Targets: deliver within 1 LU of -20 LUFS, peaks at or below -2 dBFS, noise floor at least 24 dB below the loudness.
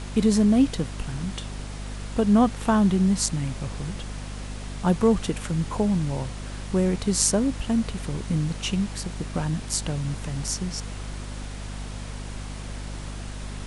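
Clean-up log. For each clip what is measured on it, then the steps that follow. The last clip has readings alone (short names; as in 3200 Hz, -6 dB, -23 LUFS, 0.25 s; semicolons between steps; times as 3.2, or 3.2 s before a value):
hum 50 Hz; harmonics up to 250 Hz; hum level -33 dBFS; noise floor -35 dBFS; noise floor target -49 dBFS; loudness -25.0 LUFS; peak -4.0 dBFS; loudness target -20.0 LUFS
-> notches 50/100/150/200/250 Hz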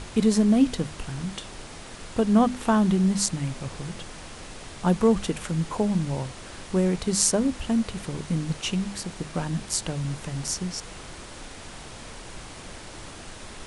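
hum none; noise floor -42 dBFS; noise floor target -50 dBFS
-> noise print and reduce 8 dB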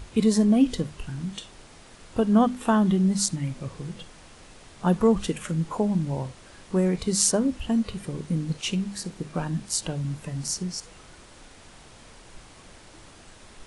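noise floor -50 dBFS; loudness -25.5 LUFS; peak -4.5 dBFS; loudness target -20.0 LUFS
-> gain +5.5 dB; limiter -2 dBFS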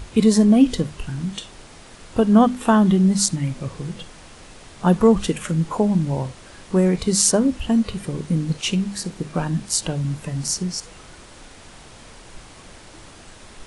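loudness -20.0 LUFS; peak -2.0 dBFS; noise floor -44 dBFS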